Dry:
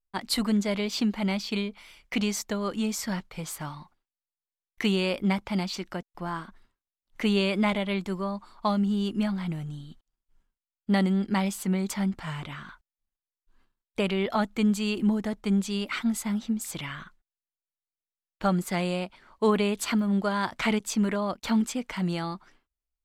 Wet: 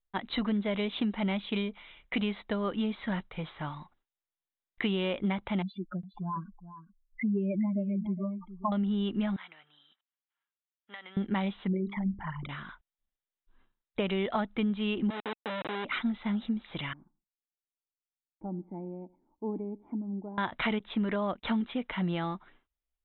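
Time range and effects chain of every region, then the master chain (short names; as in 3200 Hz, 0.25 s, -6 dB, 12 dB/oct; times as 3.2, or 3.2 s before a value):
5.62–8.72 spectral contrast raised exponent 3.9 + echo 0.413 s -13.5 dB
9.36–11.17 HPF 1400 Hz + bell 7000 Hz -14.5 dB 1.1 oct + compressor 10:1, threshold -39 dBFS
11.67–12.49 formant sharpening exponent 3 + notches 50/100/150/200/250/300/350/400/450/500 Hz
15.1–15.85 Schmitt trigger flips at -29 dBFS + HPF 410 Hz
16.93–20.38 vocal tract filter u + feedback echo 83 ms, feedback 31%, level -23.5 dB
whole clip: Chebyshev low-pass 3900 Hz, order 10; notch 2600 Hz, Q 23; compressor, threshold -26 dBFS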